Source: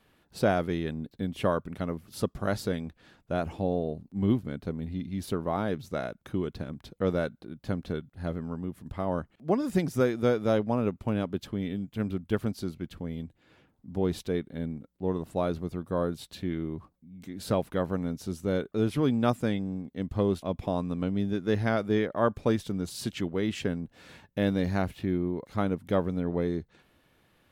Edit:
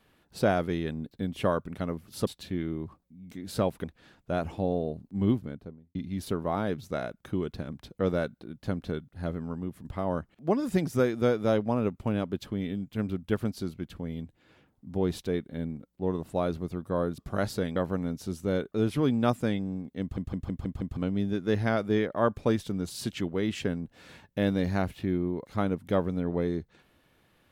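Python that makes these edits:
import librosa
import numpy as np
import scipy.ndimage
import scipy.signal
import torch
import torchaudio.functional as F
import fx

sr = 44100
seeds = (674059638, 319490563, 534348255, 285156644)

y = fx.studio_fade_out(x, sr, start_s=4.27, length_s=0.69)
y = fx.edit(y, sr, fx.swap(start_s=2.27, length_s=0.58, other_s=16.19, other_length_s=1.57),
    fx.stutter_over(start_s=20.01, slice_s=0.16, count=6), tone=tone)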